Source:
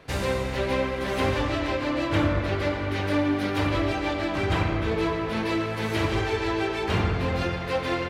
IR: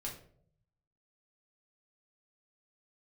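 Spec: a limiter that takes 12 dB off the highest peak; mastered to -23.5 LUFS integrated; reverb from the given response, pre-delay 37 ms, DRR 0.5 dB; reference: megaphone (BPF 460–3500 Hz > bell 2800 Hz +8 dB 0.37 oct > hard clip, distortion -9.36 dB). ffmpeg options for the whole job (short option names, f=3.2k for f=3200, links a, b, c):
-filter_complex "[0:a]alimiter=limit=-23dB:level=0:latency=1,asplit=2[a][b];[1:a]atrim=start_sample=2205,adelay=37[c];[b][c]afir=irnorm=-1:irlink=0,volume=0.5dB[d];[a][d]amix=inputs=2:normalize=0,highpass=460,lowpass=3.5k,equalizer=f=2.8k:t=o:w=0.37:g=8,asoftclip=type=hard:threshold=-32dB,volume=10.5dB"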